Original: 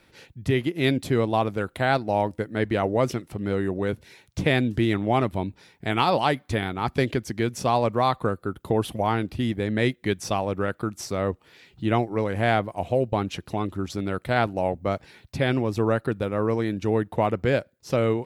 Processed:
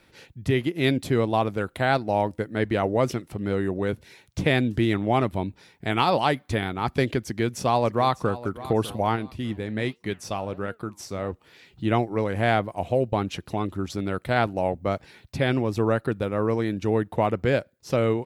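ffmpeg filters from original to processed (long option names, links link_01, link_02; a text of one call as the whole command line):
ffmpeg -i in.wav -filter_complex "[0:a]asplit=2[link_01][link_02];[link_02]afade=type=in:start_time=7.22:duration=0.01,afade=type=out:start_time=8.41:duration=0.01,aecho=0:1:600|1200|1800|2400:0.158489|0.0633957|0.0253583|0.0101433[link_03];[link_01][link_03]amix=inputs=2:normalize=0,asplit=3[link_04][link_05][link_06];[link_04]afade=type=out:start_time=9.15:duration=0.02[link_07];[link_05]flanger=delay=4.2:depth=6.9:regen=84:speed=1.4:shape=sinusoidal,afade=type=in:start_time=9.15:duration=0.02,afade=type=out:start_time=11.31:duration=0.02[link_08];[link_06]afade=type=in:start_time=11.31:duration=0.02[link_09];[link_07][link_08][link_09]amix=inputs=3:normalize=0" out.wav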